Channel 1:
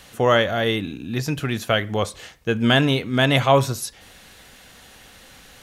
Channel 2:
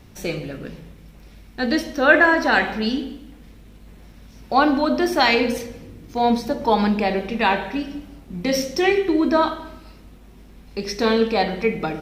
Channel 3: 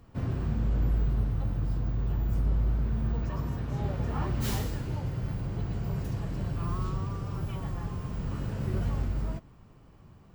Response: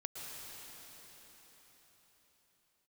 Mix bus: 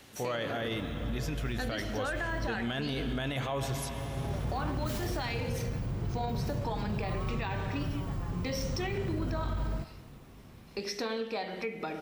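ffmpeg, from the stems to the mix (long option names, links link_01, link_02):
-filter_complex "[0:a]volume=-13dB,asplit=3[link_01][link_02][link_03];[link_02]volume=-5.5dB[link_04];[1:a]highpass=frequency=320:poles=1,acompressor=threshold=-27dB:ratio=6,volume=-4dB[link_05];[2:a]adelay=450,volume=-2dB,asplit=2[link_06][link_07];[link_07]volume=-16.5dB[link_08];[link_03]apad=whole_len=476089[link_09];[link_06][link_09]sidechaincompress=threshold=-46dB:ratio=8:attack=16:release=494[link_10];[3:a]atrim=start_sample=2205[link_11];[link_04][link_08]amix=inputs=2:normalize=0[link_12];[link_12][link_11]afir=irnorm=-1:irlink=0[link_13];[link_01][link_05][link_10][link_13]amix=inputs=4:normalize=0,alimiter=level_in=1dB:limit=-24dB:level=0:latency=1:release=19,volume=-1dB"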